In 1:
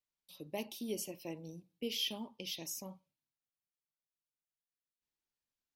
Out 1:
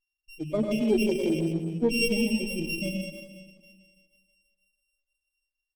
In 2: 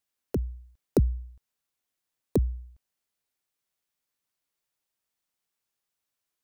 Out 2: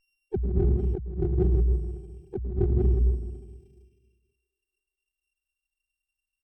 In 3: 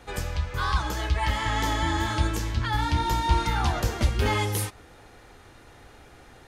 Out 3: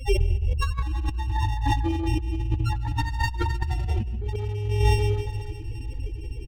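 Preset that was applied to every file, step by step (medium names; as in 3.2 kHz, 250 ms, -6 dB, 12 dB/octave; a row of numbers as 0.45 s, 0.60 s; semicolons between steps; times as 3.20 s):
sorted samples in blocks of 16 samples; doubling 19 ms -12 dB; dynamic bell 350 Hz, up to +3 dB, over -45 dBFS, Q 4.1; loudest bins only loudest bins 4; thinning echo 485 ms, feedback 51%, high-pass 890 Hz, level -22 dB; plate-style reverb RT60 1.6 s, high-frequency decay 0.8×, pre-delay 85 ms, DRR 0.5 dB; compressor with a negative ratio -36 dBFS, ratio -1; sliding maximum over 9 samples; normalise loudness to -27 LUFS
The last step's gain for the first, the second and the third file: +17.0 dB, +11.0 dB, +11.5 dB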